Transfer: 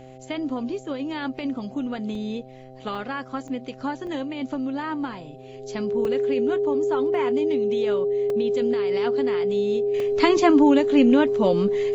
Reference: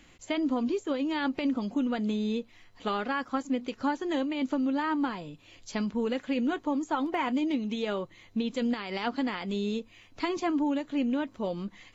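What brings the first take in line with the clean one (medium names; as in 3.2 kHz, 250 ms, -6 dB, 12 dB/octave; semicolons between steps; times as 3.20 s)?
de-hum 129.9 Hz, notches 6; band-stop 410 Hz, Q 30; interpolate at 2.15/2.95/3.48/4.07/6.05/8.30/10.00 s, 2.1 ms; trim 0 dB, from 9.94 s -11.5 dB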